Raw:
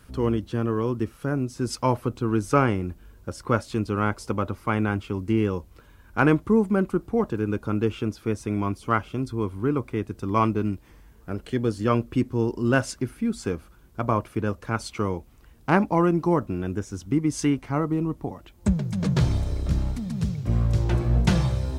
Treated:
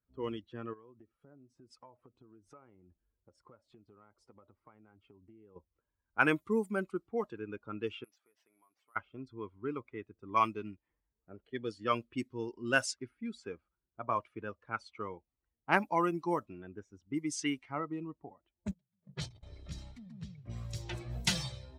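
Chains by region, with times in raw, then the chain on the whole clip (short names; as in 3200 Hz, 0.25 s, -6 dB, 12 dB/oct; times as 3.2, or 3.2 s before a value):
0.73–5.56 compressor 16:1, threshold -31 dBFS + high shelf 9100 Hz +8.5 dB
8.04–8.96 HPF 1400 Hz 6 dB/oct + compressor 20:1, threshold -41 dBFS + careless resampling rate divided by 4×, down none, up zero stuff
18.71–19.43 gate -21 dBFS, range -25 dB + notches 60/120/180/240 Hz
whole clip: per-bin expansion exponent 1.5; low-pass opened by the level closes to 650 Hz, open at -18.5 dBFS; tilt +4 dB/oct; gain -3.5 dB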